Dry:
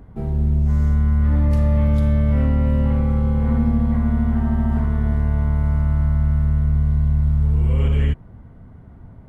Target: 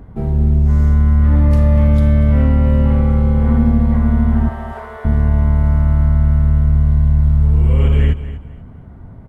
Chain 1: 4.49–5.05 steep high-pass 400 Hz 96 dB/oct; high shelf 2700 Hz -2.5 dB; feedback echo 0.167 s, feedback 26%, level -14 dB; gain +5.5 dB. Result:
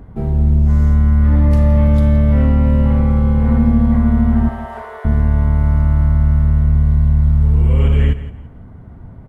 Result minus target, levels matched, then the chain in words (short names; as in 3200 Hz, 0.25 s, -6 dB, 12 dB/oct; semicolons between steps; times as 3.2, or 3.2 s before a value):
echo 75 ms early
4.49–5.05 steep high-pass 400 Hz 96 dB/oct; high shelf 2700 Hz -2.5 dB; feedback echo 0.242 s, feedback 26%, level -14 dB; gain +5.5 dB